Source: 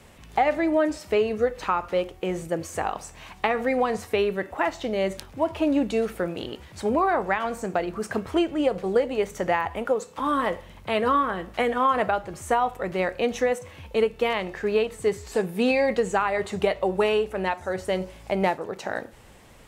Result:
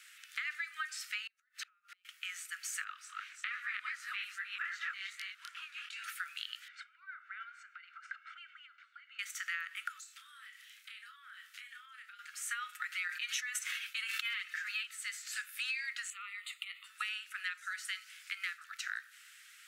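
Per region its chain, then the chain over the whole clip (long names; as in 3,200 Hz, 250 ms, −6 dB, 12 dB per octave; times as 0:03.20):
0:01.27–0:02.05: downward compressor 10 to 1, threshold −30 dBFS + gate with flip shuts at −27 dBFS, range −30 dB
0:02.84–0:06.04: delay that plays each chunk backwards 191 ms, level −1 dB + spectral tilt −3 dB per octave + chorus effect 2.5 Hz, delay 19 ms, depth 7.6 ms
0:06.68–0:09.19: low-pass filter 2,200 Hz + comb filter 1.4 ms, depth 63% + downward compressor, threshold −36 dBFS
0:09.99–0:12.19: guitar amp tone stack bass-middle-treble 10-0-10 + downward compressor 12 to 1, threshold −45 dBFS + double-tracking delay 30 ms −6.5 dB
0:12.71–0:14.84: comb filter 6.3 ms, depth 67% + level that may fall only so fast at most 53 dB per second
0:16.10–0:16.84: downward compressor 10 to 1, threshold −27 dBFS + phaser with its sweep stopped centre 1,600 Hz, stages 6
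whole clip: Butterworth high-pass 1,300 Hz 96 dB per octave; downward compressor, threshold −35 dBFS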